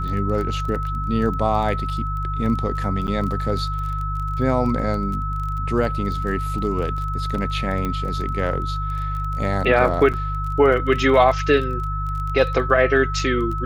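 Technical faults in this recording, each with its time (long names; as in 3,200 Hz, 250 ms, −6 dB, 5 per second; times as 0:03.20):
surface crackle 22 per second −28 dBFS
mains hum 50 Hz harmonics 3 −26 dBFS
whistle 1,300 Hz −27 dBFS
0:03.07–0:03.08: drop-out 8.8 ms
0:07.85: click −13 dBFS
0:10.13–0:10.14: drop-out 7.4 ms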